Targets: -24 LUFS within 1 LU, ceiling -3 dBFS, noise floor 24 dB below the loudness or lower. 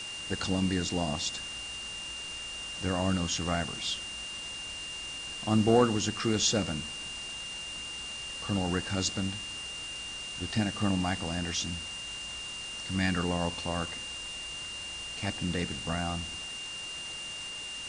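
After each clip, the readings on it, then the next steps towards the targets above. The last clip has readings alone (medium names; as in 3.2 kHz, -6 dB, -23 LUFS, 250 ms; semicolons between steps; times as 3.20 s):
steady tone 2.8 kHz; tone level -38 dBFS; noise floor -40 dBFS; noise floor target -56 dBFS; loudness -32.0 LUFS; peak level -12.5 dBFS; loudness target -24.0 LUFS
-> band-stop 2.8 kHz, Q 30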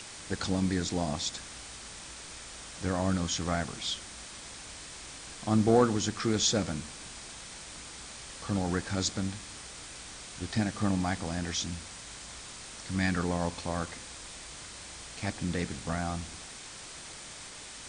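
steady tone not found; noise floor -46 dBFS; noise floor target -58 dBFS
-> noise print and reduce 12 dB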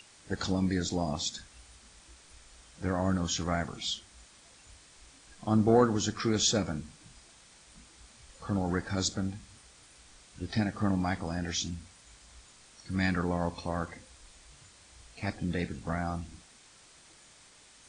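noise floor -57 dBFS; loudness -31.5 LUFS; peak level -12.5 dBFS; loudness target -24.0 LUFS
-> trim +7.5 dB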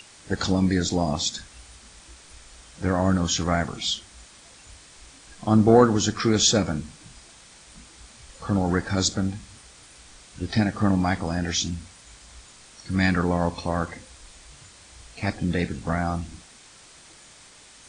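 loudness -24.0 LUFS; peak level -5.0 dBFS; noise floor -50 dBFS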